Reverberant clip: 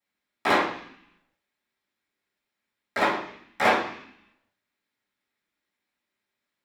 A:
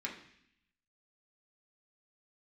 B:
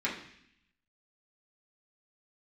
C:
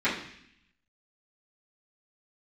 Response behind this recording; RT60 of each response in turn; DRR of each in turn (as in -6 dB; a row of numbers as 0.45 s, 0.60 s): C; 0.70 s, 0.70 s, 0.70 s; -3.0 dB, -7.5 dB, -14.5 dB